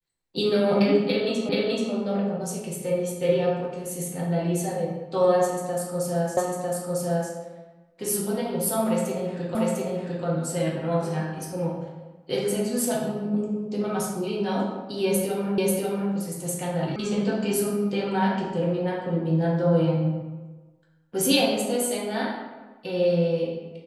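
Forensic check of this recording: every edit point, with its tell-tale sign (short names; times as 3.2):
1.49 repeat of the last 0.43 s
6.37 repeat of the last 0.95 s
9.55 repeat of the last 0.7 s
15.58 repeat of the last 0.54 s
16.96 sound cut off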